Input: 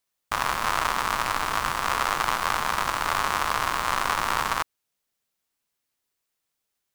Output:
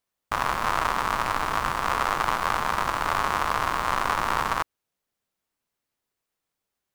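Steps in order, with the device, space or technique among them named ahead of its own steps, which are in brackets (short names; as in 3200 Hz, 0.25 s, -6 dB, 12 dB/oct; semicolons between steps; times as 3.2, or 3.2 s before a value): behind a face mask (high shelf 2000 Hz -8 dB); gain +2.5 dB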